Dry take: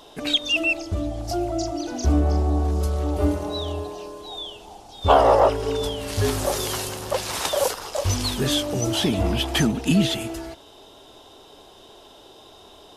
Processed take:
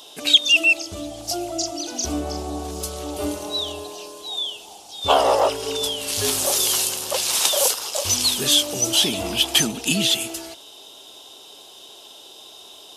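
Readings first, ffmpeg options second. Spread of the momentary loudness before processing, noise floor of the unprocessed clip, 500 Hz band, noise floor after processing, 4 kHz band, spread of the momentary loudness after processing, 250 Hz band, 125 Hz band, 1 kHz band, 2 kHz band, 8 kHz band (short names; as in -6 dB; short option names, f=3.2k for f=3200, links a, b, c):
14 LU, -48 dBFS, -2.5 dB, -44 dBFS, +8.0 dB, 14 LU, -5.0 dB, -11.0 dB, -1.5 dB, +5.0 dB, +10.5 dB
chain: -af "highpass=f=310:p=1,highshelf=f=9.7k:g=-4,aexciter=amount=4.1:drive=2.3:freq=2.6k,volume=-1dB"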